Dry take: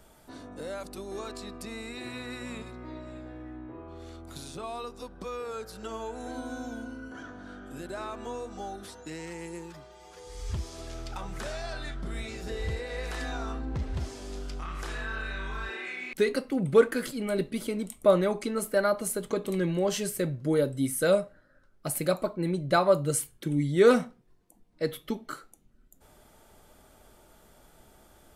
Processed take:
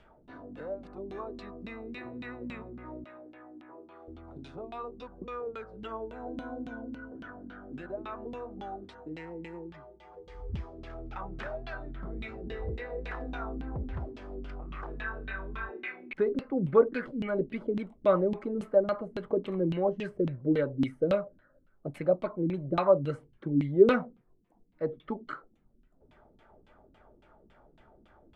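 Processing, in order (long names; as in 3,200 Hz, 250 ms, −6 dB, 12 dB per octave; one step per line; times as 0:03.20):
auto-filter low-pass saw down 3.6 Hz 210–3,200 Hz
0:03.04–0:04.08: meter weighting curve A
level −4 dB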